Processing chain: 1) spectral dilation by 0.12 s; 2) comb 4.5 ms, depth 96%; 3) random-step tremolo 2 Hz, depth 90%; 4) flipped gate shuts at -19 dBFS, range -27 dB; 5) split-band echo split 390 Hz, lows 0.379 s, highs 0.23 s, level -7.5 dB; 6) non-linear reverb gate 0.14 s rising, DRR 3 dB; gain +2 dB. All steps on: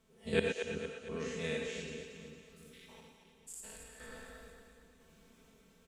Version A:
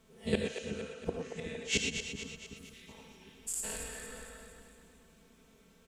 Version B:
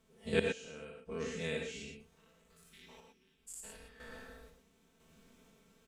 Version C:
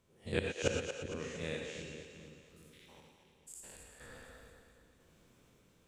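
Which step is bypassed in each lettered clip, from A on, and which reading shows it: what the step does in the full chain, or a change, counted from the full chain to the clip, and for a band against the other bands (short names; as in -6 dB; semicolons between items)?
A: 3, 8 kHz band +9.0 dB; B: 5, echo-to-direct -0.5 dB to -3.0 dB; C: 2, 125 Hz band +2.5 dB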